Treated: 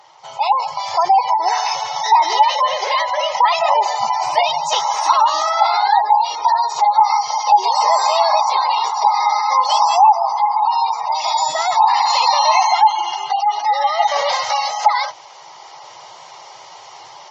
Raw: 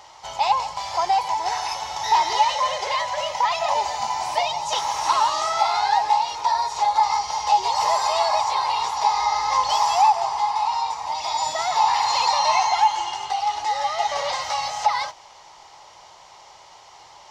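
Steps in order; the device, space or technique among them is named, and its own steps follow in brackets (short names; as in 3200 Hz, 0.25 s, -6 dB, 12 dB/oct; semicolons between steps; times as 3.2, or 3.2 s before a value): noise-suppressed video call (HPF 110 Hz 24 dB/oct; spectral gate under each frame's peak -25 dB strong; AGC gain up to 8.5 dB; Opus 32 kbps 48000 Hz)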